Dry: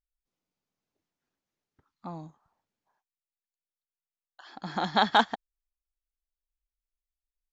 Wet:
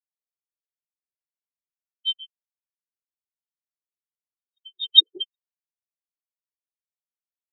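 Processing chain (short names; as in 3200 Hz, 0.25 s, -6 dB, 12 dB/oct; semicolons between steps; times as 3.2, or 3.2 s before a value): four-band scrambler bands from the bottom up 3412; high shelf 3200 Hz -3.5 dB; AGC gain up to 16 dB; LFO low-pass square 7.3 Hz 460–3500 Hz; spectral expander 4:1; gain -3.5 dB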